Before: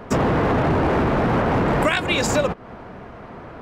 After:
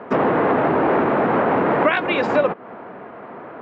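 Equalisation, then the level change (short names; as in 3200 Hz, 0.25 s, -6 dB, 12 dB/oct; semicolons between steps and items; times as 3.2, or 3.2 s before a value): BPF 270–2400 Hz; air absorption 130 m; +4.0 dB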